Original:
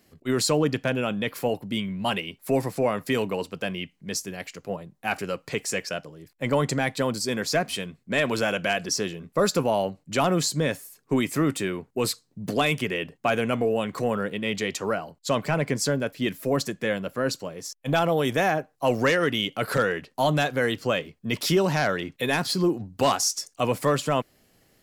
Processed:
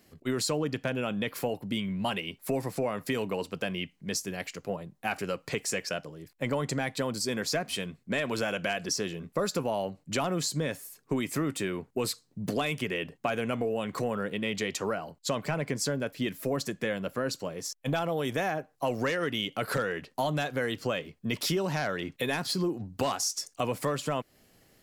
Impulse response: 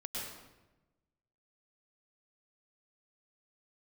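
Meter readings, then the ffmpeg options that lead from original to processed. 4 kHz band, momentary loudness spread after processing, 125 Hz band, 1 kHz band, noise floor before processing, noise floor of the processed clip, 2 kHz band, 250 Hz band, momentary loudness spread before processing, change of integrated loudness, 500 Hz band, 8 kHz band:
-4.5 dB, 5 LU, -5.5 dB, -6.5 dB, -67 dBFS, -67 dBFS, -6.0 dB, -5.5 dB, 8 LU, -5.5 dB, -6.0 dB, -4.0 dB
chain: -af "acompressor=threshold=-28dB:ratio=3"

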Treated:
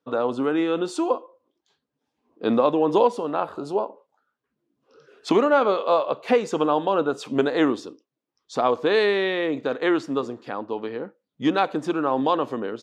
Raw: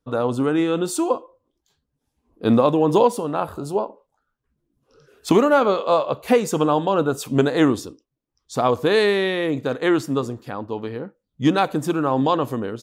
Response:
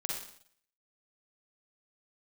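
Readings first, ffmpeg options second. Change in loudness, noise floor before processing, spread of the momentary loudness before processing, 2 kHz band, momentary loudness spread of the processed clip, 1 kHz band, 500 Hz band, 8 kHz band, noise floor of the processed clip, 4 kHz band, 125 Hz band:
-2.5 dB, -79 dBFS, 13 LU, -1.5 dB, 11 LU, -1.5 dB, -2.0 dB, under -10 dB, -83 dBFS, -3.0 dB, -11.5 dB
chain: -filter_complex "[0:a]asplit=2[a][b];[b]acompressor=threshold=-29dB:ratio=6,volume=-2dB[c];[a][c]amix=inputs=2:normalize=0,highpass=260,lowpass=4.5k,volume=-3dB"

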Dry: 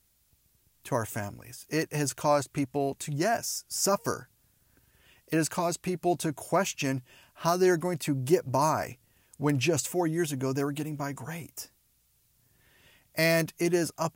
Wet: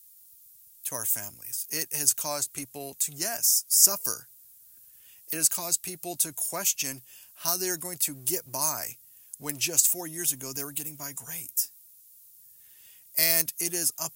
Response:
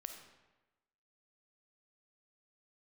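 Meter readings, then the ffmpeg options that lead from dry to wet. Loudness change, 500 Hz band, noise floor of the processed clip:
+3.0 dB, -10.5 dB, -55 dBFS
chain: -filter_complex "[0:a]acrossover=split=180[a][b];[a]asoftclip=type=hard:threshold=-38dB[c];[c][b]amix=inputs=2:normalize=0,highshelf=f=4.6k:g=9.5,crystalizer=i=5.5:c=0,volume=-11.5dB"

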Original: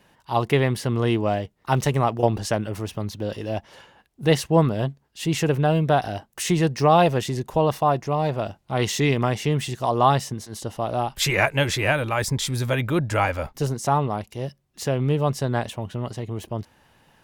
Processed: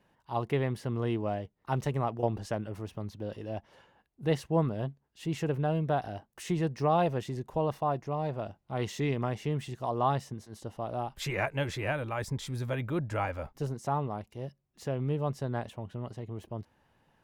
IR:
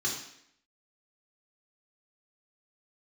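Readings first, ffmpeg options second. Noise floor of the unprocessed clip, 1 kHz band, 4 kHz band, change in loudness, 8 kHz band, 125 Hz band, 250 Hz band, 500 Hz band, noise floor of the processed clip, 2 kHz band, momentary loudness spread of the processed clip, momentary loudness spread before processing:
-64 dBFS, -10.0 dB, -15.0 dB, -10.0 dB, -17.0 dB, -9.0 dB, -9.0 dB, -9.5 dB, -75 dBFS, -12.5 dB, 11 LU, 11 LU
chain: -af "highshelf=f=2.3k:g=-8.5,volume=-9dB"

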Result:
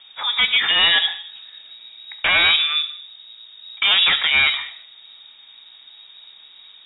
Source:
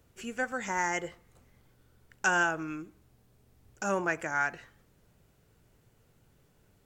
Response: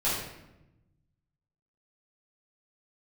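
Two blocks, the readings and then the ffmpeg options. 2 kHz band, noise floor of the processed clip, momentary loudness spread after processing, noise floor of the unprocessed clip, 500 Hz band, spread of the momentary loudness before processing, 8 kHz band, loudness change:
+12.0 dB, -47 dBFS, 13 LU, -67 dBFS, -2.0 dB, 14 LU, under -40 dB, +15.5 dB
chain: -filter_complex "[0:a]aeval=exprs='0.224*sin(PI/2*5.01*val(0)/0.224)':c=same,asplit=2[a][b];[1:a]atrim=start_sample=2205,afade=t=out:st=0.29:d=0.01,atrim=end_sample=13230[c];[b][c]afir=irnorm=-1:irlink=0,volume=-19dB[d];[a][d]amix=inputs=2:normalize=0,lowpass=f=3.2k:t=q:w=0.5098,lowpass=f=3.2k:t=q:w=0.6013,lowpass=f=3.2k:t=q:w=0.9,lowpass=f=3.2k:t=q:w=2.563,afreqshift=-3800"

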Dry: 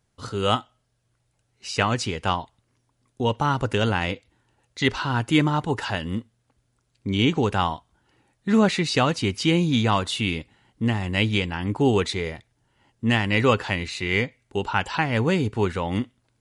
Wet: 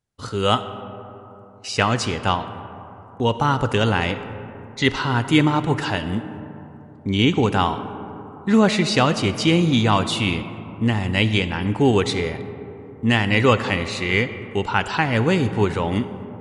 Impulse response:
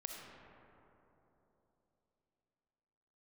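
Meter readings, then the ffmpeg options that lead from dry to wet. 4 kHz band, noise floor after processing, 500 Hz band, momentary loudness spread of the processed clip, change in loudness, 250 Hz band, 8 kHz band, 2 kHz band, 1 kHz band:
+3.0 dB, -43 dBFS, +3.5 dB, 17 LU, +3.5 dB, +3.5 dB, +3.0 dB, +3.5 dB, +3.5 dB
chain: -filter_complex "[0:a]agate=range=-14dB:threshold=-51dB:ratio=16:detection=peak,asplit=2[a][b];[1:a]atrim=start_sample=2205[c];[b][c]afir=irnorm=-1:irlink=0,volume=-3dB[d];[a][d]amix=inputs=2:normalize=0"

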